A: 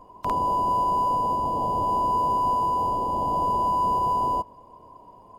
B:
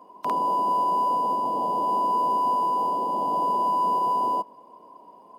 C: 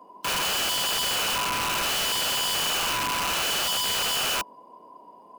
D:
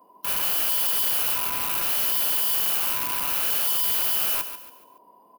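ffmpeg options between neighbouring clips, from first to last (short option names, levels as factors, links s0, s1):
-af "highpass=f=200:w=0.5412,highpass=f=200:w=1.3066,bandreject=f=7100:w=6.9"
-filter_complex "[0:a]acrossover=split=290[s0][s1];[s0]alimiter=level_in=7.5:limit=0.0631:level=0:latency=1,volume=0.133[s2];[s1]aeval=exprs='(mod(13.3*val(0)+1,2)-1)/13.3':c=same[s3];[s2][s3]amix=inputs=2:normalize=0"
-af "aexciter=amount=3.4:drive=9.1:freq=10000,aecho=1:1:142|284|426|568:0.299|0.107|0.0387|0.0139,volume=0.501"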